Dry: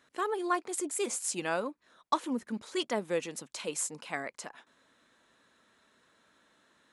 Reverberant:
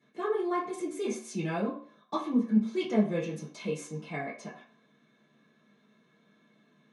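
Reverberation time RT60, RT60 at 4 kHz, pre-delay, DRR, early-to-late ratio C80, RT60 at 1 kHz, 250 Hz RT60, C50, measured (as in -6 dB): 0.50 s, 0.50 s, 3 ms, -10.0 dB, 11.5 dB, 0.55 s, 0.40 s, 7.0 dB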